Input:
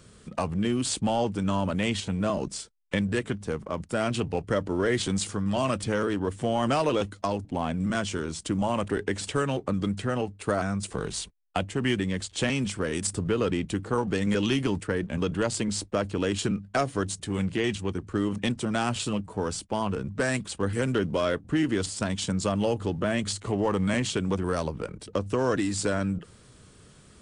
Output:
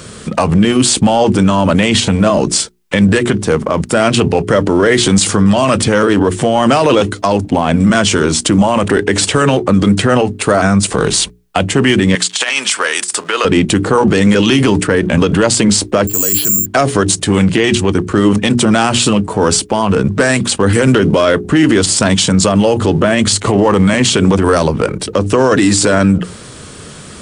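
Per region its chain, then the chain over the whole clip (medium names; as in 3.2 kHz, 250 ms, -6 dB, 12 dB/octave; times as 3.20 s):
12.15–13.45 s: high-pass 1 kHz + compressor with a negative ratio -35 dBFS, ratio -0.5
16.07–16.66 s: careless resampling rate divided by 6×, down filtered, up zero stuff + three bands expanded up and down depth 100%
whole clip: bass shelf 84 Hz -9.5 dB; hum notches 60/120/180/240/300/360/420 Hz; loudness maximiser +24 dB; trim -1 dB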